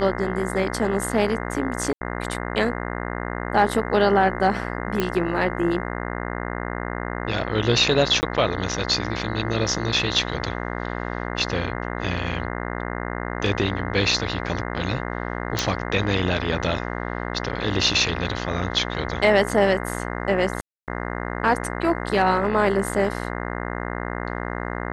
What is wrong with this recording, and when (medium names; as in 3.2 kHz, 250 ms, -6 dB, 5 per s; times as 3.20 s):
buzz 60 Hz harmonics 35 -29 dBFS
1.93–2.01 s: dropout 80 ms
5.00 s: pop -9 dBFS
8.21–8.23 s: dropout 19 ms
15.59 s: pop
20.61–20.88 s: dropout 268 ms